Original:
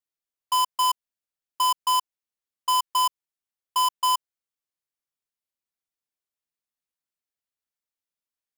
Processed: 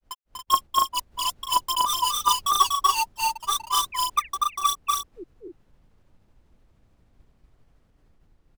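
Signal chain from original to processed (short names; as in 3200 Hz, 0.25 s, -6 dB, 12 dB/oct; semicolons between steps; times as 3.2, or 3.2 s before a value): phaser 1.2 Hz, delay 3.3 ms, feedback 79%; added noise brown -50 dBFS; gate -44 dBFS, range -9 dB; painted sound fall, 4.56–4.82, 350–2600 Hz -35 dBFS; grains 0.151 s, grains 13/s, spray 0.757 s, pitch spread up and down by 3 st; dynamic EQ 1900 Hz, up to -5 dB, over -34 dBFS, Q 1.3; on a send: loudspeakers at several distances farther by 83 m -2 dB, 96 m -4 dB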